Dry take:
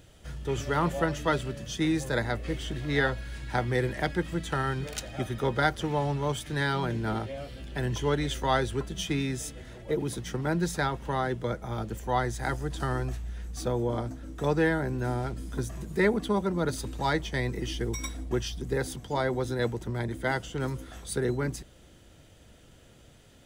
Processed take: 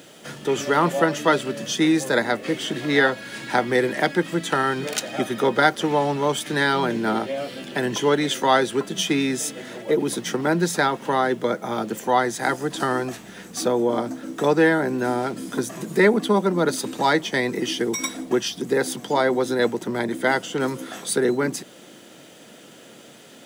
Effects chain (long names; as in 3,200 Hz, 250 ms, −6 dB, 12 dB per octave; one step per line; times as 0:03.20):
high-pass filter 190 Hz 24 dB per octave
in parallel at −1 dB: downward compressor, threshold −38 dBFS, peak gain reduction 17.5 dB
on the sum: bit-depth reduction 12 bits, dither triangular
level +7 dB